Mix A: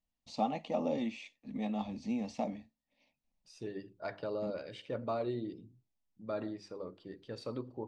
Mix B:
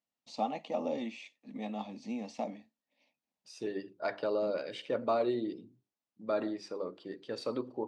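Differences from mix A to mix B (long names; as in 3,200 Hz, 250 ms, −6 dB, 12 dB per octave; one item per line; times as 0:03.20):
second voice +6.0 dB
master: add high-pass filter 240 Hz 12 dB per octave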